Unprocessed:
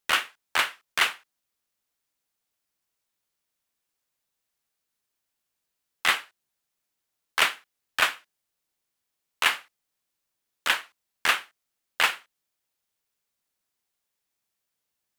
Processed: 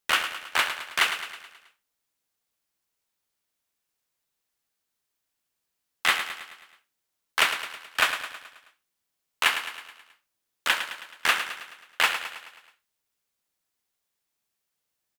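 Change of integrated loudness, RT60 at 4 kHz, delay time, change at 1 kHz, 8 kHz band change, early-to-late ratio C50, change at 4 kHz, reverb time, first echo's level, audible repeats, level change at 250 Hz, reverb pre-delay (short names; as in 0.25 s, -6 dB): 0.0 dB, none, 0.107 s, +0.5 dB, +0.5 dB, none, +0.5 dB, none, -9.5 dB, 5, +0.5 dB, none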